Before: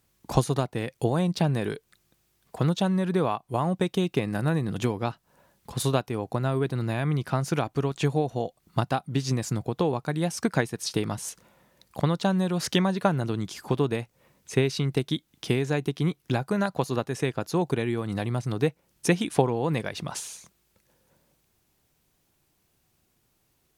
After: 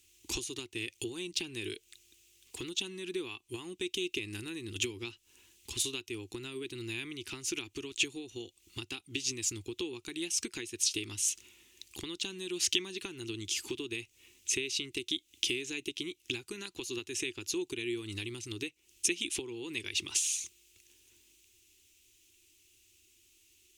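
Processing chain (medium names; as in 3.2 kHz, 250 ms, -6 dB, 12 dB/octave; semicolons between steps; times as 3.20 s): treble shelf 4.4 kHz +6 dB; compression 4:1, threshold -32 dBFS, peak gain reduction 15 dB; FFT filter 100 Hz 0 dB, 150 Hz -21 dB, 360 Hz +6 dB, 610 Hz -27 dB, 880 Hz -13 dB, 1.6 kHz -7 dB, 2.7 kHz +14 dB, 4.6 kHz +5 dB, 6.7 kHz +11 dB, 12 kHz 0 dB; trim -2.5 dB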